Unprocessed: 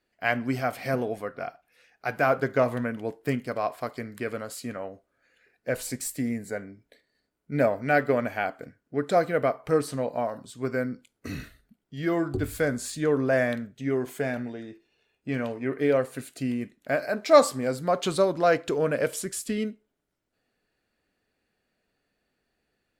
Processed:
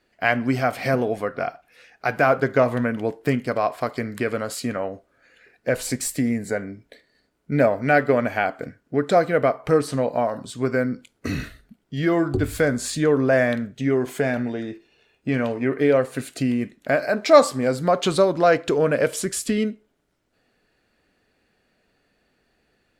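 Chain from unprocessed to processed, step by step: high shelf 11000 Hz -9.5 dB; in parallel at +3 dB: compressor, threshold -33 dBFS, peak gain reduction 20.5 dB; on the sum: gain +2.5 dB

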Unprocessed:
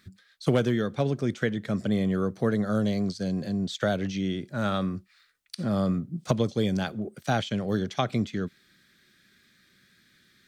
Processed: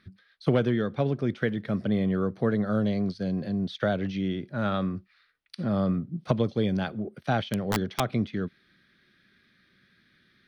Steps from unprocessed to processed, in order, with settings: 1.38–1.8 block floating point 7-bit; running mean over 6 samples; 7.47–8 wrapped overs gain 18.5 dB

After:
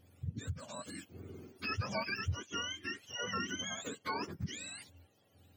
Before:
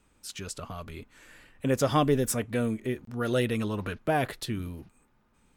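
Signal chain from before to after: spectrum mirrored in octaves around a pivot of 830 Hz; compressor 2:1, threshold -45 dBFS, peak gain reduction 14.5 dB; gain +1.5 dB

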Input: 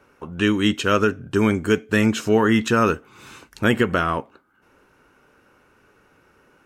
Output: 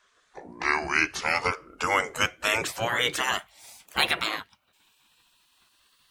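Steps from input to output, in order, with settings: speed glide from 59% -> 159%; spectral gate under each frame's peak -15 dB weak; gain +4.5 dB

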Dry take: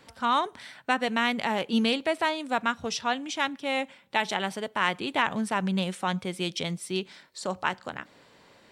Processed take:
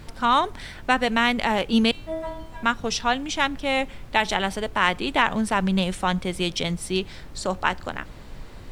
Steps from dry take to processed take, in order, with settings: 1.91–2.63 metallic resonator 320 Hz, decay 0.7 s, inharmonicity 0.002; added noise brown -43 dBFS; gain +5 dB

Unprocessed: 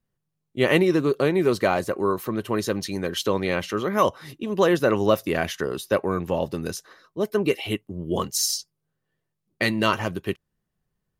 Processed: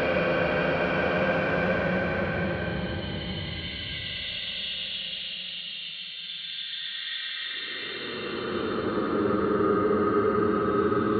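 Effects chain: nonlinear frequency compression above 3000 Hz 4:1; soft clip -12.5 dBFS, distortion -18 dB; Paulstretch 50×, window 0.05 s, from 3.55

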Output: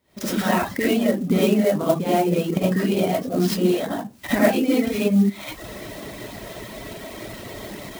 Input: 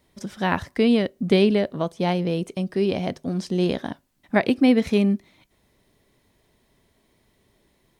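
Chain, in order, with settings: 0.91–2.69 median filter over 9 samples; recorder AGC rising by 75 dB/s; HPF 71 Hz; digital reverb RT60 0.44 s, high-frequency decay 0.4×, pre-delay 30 ms, DRR -9 dB; reverb removal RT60 0.6 s; clock jitter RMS 0.029 ms; gain -7.5 dB

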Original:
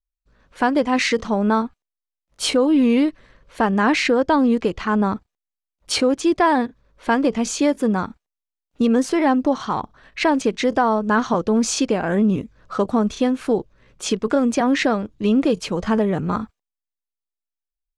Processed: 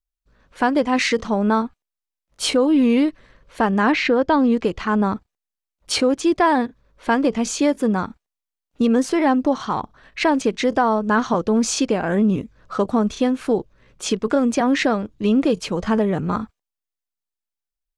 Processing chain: 3.91–4.61 LPF 3600 Hz -> 8500 Hz 12 dB/oct

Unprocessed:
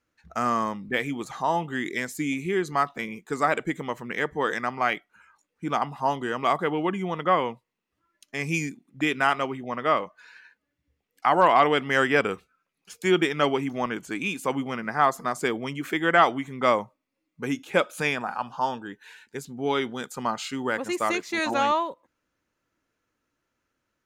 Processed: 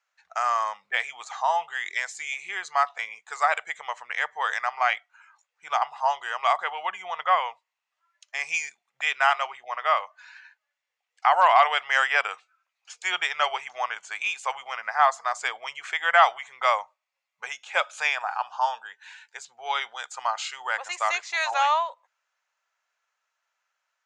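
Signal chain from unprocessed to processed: elliptic band-pass 720–7400 Hz, stop band 40 dB; gain +2.5 dB

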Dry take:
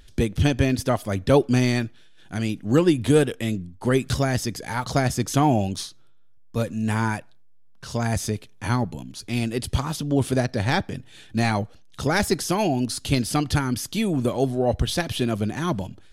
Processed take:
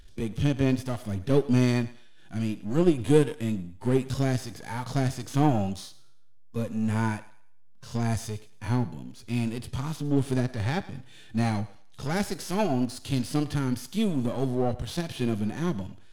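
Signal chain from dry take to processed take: half-wave gain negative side -7 dB; harmonic-percussive split percussive -13 dB; thinning echo 0.108 s, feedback 34%, high-pass 500 Hz, level -17 dB; gain +1.5 dB

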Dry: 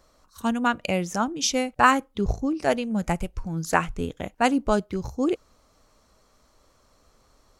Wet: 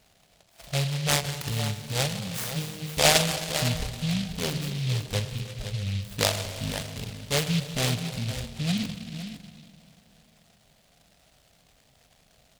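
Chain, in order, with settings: HPF 77 Hz; low shelf 150 Hz -6.5 dB; de-hum 127.3 Hz, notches 21; in parallel at +2 dB: compressor, threshold -37 dBFS, peak gain reduction 23 dB; on the sum: fixed phaser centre 2100 Hz, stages 6; wide varispeed 0.603×; tape spacing loss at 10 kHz 29 dB; echo 0.509 s -10.5 dB; on a send at -10 dB: reverb RT60 2.8 s, pre-delay 45 ms; on the sum: noise-modulated delay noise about 3200 Hz, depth 0.27 ms

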